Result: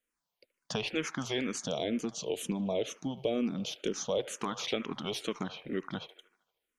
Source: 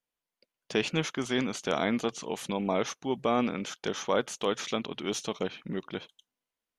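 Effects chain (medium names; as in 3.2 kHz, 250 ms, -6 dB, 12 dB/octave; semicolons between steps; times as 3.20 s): 1.51–4.20 s: high-order bell 1.3 kHz -12 dB; compression 2.5:1, threshold -34 dBFS, peak gain reduction 8.5 dB; feedback echo behind a band-pass 76 ms, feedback 57%, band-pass 1.2 kHz, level -13.5 dB; barber-pole phaser -2.1 Hz; trim +5.5 dB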